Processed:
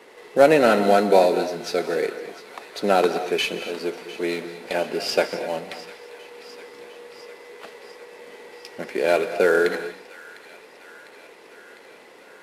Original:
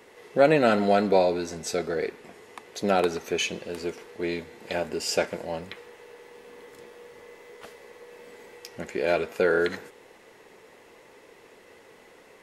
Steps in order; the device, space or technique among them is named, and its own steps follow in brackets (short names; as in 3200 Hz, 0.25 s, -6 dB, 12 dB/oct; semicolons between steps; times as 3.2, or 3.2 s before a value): Chebyshev band-pass 110–4800 Hz, order 3; early wireless headset (HPF 210 Hz 12 dB/oct; CVSD 64 kbps); thin delay 0.702 s, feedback 70%, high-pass 1400 Hz, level -16.5 dB; non-linear reverb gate 0.27 s rising, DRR 11 dB; gain +5 dB